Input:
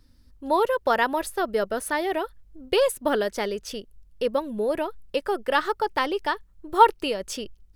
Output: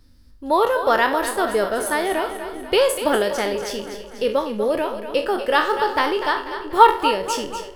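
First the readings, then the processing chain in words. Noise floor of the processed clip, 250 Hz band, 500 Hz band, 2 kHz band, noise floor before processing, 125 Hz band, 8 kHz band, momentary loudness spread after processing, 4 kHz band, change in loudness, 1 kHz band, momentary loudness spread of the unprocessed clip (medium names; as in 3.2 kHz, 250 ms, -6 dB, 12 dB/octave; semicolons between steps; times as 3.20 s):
-46 dBFS, +4.0 dB, +4.5 dB, +5.5 dB, -56 dBFS, no reading, +6.0 dB, 9 LU, +6.0 dB, +5.0 dB, +5.0 dB, 12 LU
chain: spectral sustain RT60 0.37 s; two-band feedback delay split 400 Hz, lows 401 ms, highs 244 ms, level -10 dB; trim +3 dB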